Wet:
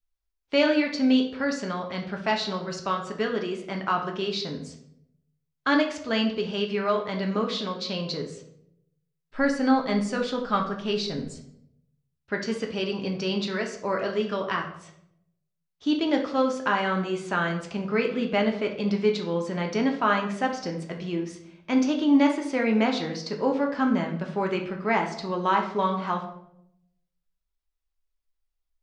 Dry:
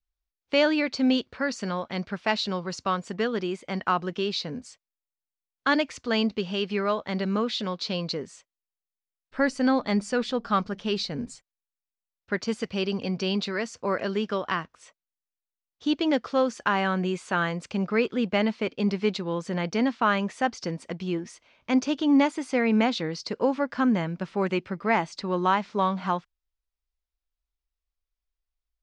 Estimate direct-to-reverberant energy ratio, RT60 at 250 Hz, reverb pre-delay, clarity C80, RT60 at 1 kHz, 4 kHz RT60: 1.5 dB, 1.0 s, 3 ms, 11.5 dB, 0.65 s, 0.50 s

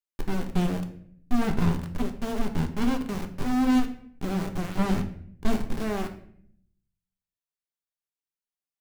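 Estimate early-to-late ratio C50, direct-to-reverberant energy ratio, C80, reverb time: 11.0 dB, 5.0 dB, 14.5 dB, 0.60 s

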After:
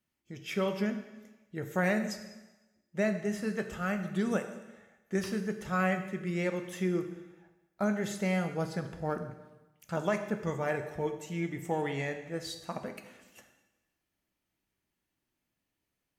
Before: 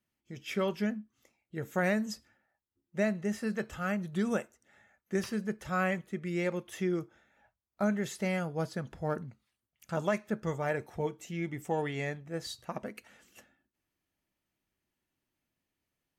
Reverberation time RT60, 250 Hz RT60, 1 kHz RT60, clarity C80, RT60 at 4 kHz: 1.1 s, 1.0 s, 1.1 s, 11.0 dB, 1.1 s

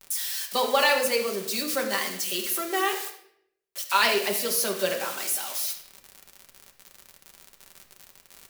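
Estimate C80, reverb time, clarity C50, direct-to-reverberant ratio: 10.5 dB, 0.70 s, 7.5 dB, 1.0 dB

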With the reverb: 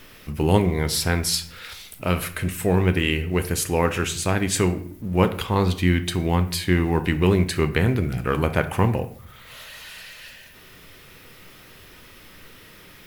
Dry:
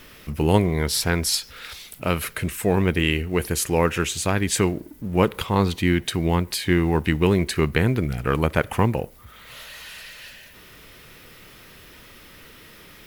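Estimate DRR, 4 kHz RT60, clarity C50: 8.5 dB, 0.40 s, 13.5 dB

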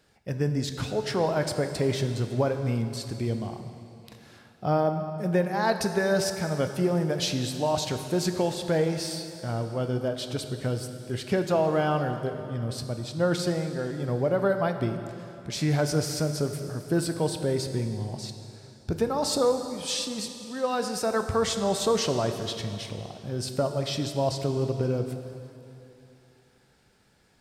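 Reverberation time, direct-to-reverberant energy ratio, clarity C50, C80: 2.9 s, 6.5 dB, 7.5 dB, 8.5 dB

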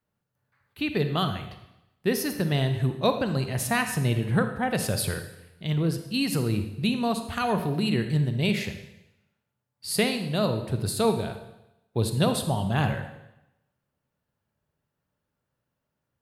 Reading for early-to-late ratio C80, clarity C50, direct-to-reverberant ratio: 11.0 dB, 8.5 dB, 7.5 dB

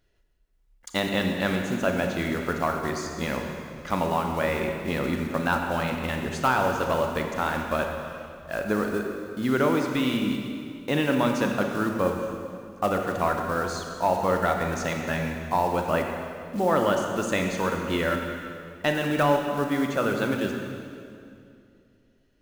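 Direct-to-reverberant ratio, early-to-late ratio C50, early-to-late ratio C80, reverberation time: 2.5 dB, 3.5 dB, 4.5 dB, 2.5 s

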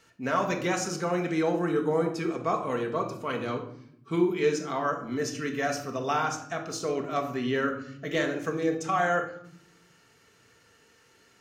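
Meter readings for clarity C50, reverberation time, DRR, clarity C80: 9.0 dB, 0.75 s, 2.5 dB, 12.5 dB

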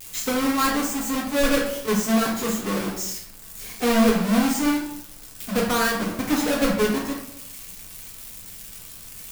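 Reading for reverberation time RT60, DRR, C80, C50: 0.70 s, −3.0 dB, 8.5 dB, 4.5 dB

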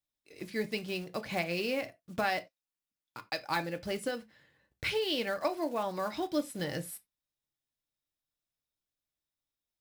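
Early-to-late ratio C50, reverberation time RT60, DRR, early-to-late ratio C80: 21.0 dB, non-exponential decay, 7.0 dB, 29.0 dB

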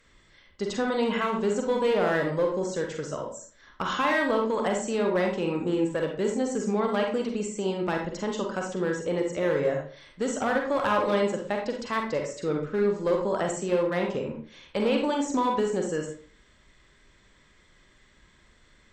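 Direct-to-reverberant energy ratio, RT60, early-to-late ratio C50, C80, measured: 1.5 dB, 0.45 s, 4.5 dB, 10.0 dB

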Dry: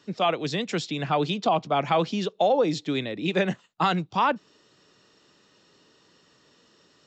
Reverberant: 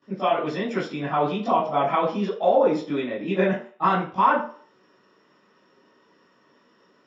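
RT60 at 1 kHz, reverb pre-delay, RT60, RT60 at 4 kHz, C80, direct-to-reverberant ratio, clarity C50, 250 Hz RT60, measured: 0.45 s, 18 ms, 0.45 s, 0.40 s, 9.5 dB, −15.0 dB, 5.0 dB, 0.35 s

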